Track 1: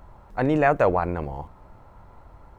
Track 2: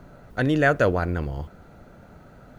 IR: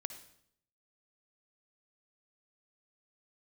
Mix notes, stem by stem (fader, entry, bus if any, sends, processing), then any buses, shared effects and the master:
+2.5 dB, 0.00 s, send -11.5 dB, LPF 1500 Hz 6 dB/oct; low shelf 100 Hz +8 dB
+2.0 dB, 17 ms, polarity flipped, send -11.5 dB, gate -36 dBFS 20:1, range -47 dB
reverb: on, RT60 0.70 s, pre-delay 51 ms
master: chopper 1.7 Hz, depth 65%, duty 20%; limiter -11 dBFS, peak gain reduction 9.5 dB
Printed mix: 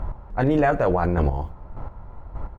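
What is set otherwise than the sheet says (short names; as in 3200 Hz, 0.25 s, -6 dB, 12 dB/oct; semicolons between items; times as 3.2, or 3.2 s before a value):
stem 1 +2.5 dB -> +11.5 dB; stem 2: polarity flipped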